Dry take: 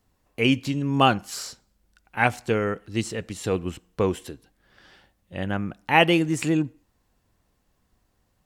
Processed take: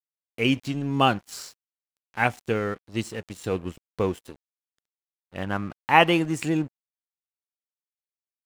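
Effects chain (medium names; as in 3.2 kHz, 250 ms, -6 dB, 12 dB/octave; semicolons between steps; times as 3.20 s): 5.36–6.32 s: peaking EQ 1.1 kHz +8 dB 0.82 oct; crossover distortion -41.5 dBFS; trim -1.5 dB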